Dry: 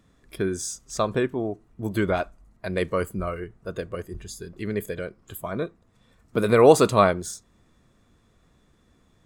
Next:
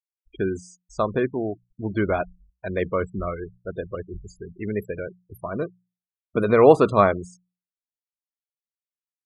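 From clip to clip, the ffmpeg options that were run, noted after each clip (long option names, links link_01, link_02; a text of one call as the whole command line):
ffmpeg -i in.wav -filter_complex "[0:a]afftfilt=real='re*gte(hypot(re,im),0.0282)':imag='im*gte(hypot(re,im),0.0282)':win_size=1024:overlap=0.75,acrossover=split=2800[link_01][link_02];[link_02]acompressor=threshold=-50dB:ratio=4:attack=1:release=60[link_03];[link_01][link_03]amix=inputs=2:normalize=0,bandreject=frequency=60:width_type=h:width=6,bandreject=frequency=120:width_type=h:width=6,bandreject=frequency=180:width_type=h:width=6,volume=1dB" out.wav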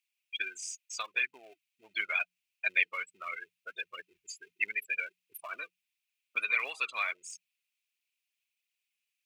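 ffmpeg -i in.wav -af "acompressor=threshold=-28dB:ratio=4,aphaser=in_gain=1:out_gain=1:delay=4.3:decay=0.42:speed=1.5:type=triangular,highpass=frequency=2500:width_type=q:width=5.9,volume=6dB" out.wav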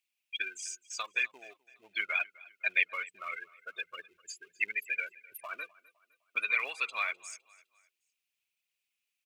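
ffmpeg -i in.wav -af "aecho=1:1:255|510|765:0.0794|0.0326|0.0134" out.wav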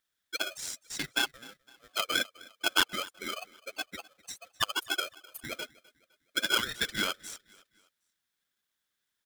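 ffmpeg -i in.wav -af "aeval=exprs='val(0)*sgn(sin(2*PI*920*n/s))':channel_layout=same,volume=2dB" out.wav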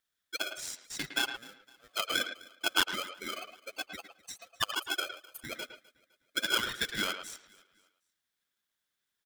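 ffmpeg -i in.wav -filter_complex "[0:a]asplit=2[link_01][link_02];[link_02]adelay=110,highpass=300,lowpass=3400,asoftclip=type=hard:threshold=-20.5dB,volume=-8dB[link_03];[link_01][link_03]amix=inputs=2:normalize=0,volume=-2dB" out.wav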